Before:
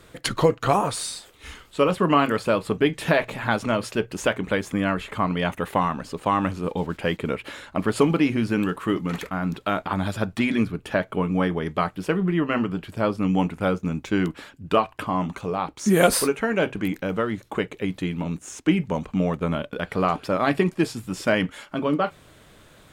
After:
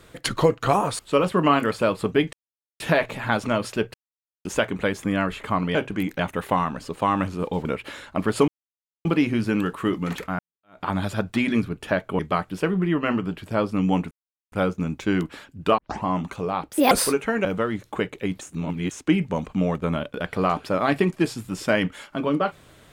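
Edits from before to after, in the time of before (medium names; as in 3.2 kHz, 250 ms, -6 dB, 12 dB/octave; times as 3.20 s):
0.99–1.65 s: delete
2.99 s: insert silence 0.47 s
4.13 s: insert silence 0.51 s
6.89–7.25 s: delete
8.08 s: insert silence 0.57 s
9.42–9.87 s: fade in exponential
11.22–11.65 s: delete
13.57 s: insert silence 0.41 s
14.83 s: tape start 0.27 s
15.76–16.06 s: speed 149%
16.60–17.04 s: move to 5.43 s
18.00–18.50 s: reverse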